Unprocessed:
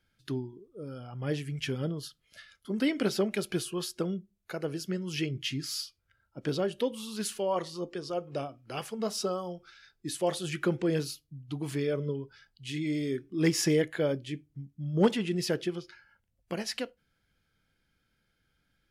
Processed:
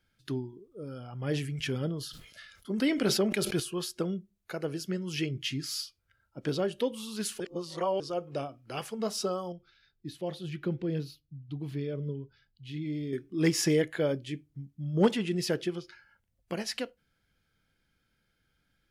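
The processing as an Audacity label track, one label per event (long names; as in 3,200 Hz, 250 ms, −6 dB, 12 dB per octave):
0.680000	3.600000	level that may fall only so fast at most 63 dB per second
7.400000	8.000000	reverse
9.520000	13.130000	drawn EQ curve 150 Hz 0 dB, 1,200 Hz −12 dB, 4,000 Hz −7 dB, 8,300 Hz −22 dB, 13,000 Hz −11 dB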